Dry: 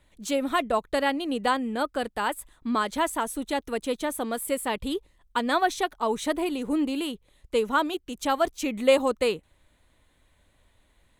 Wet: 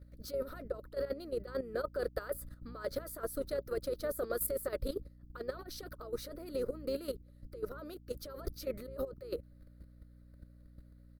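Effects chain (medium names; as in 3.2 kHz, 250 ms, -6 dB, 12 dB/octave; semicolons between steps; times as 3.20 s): compressor with a negative ratio -29 dBFS, ratio -0.5; FFT filter 120 Hz 0 dB, 170 Hz -24 dB, 390 Hz -8 dB, 560 Hz +4 dB, 900 Hz -28 dB, 1.3 kHz -1 dB, 3.2 kHz -25 dB, 4.7 kHz 0 dB, 7.2 kHz -22 dB, 14 kHz +3 dB; harmony voices -5 st -13 dB; hum 60 Hz, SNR 11 dB; level held to a coarse grid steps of 12 dB; trim +2.5 dB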